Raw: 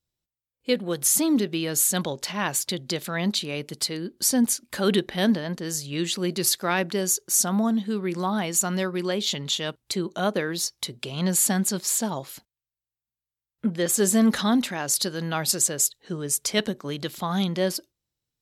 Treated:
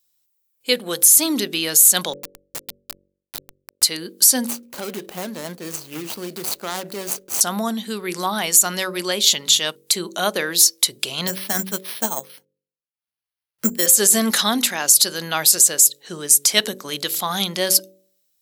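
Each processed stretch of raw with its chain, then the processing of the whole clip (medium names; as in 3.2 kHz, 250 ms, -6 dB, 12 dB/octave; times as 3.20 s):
2.13–3.83 s: bass shelf 88 Hz -5.5 dB + compression 3:1, threshold -33 dBFS + Schmitt trigger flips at -26.5 dBFS
4.47–7.41 s: median filter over 25 samples + compression, threshold -26 dBFS
11.27–13.87 s: transient shaper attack +7 dB, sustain -11 dB + careless resampling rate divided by 6×, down filtered, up hold
whole clip: RIAA curve recording; de-hum 47.43 Hz, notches 12; peak limiter -7 dBFS; trim +5 dB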